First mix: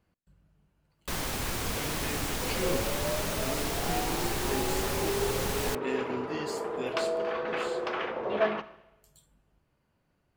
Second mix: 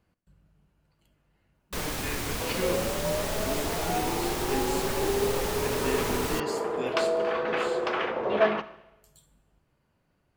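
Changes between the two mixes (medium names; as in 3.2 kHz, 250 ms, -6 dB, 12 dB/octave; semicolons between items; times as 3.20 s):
speech: send +11.0 dB; first sound: entry +0.65 s; second sound +4.0 dB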